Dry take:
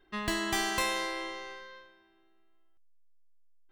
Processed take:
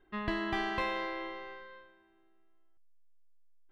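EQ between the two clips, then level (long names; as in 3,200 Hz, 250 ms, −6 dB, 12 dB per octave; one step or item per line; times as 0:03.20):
high-frequency loss of the air 360 metres
0.0 dB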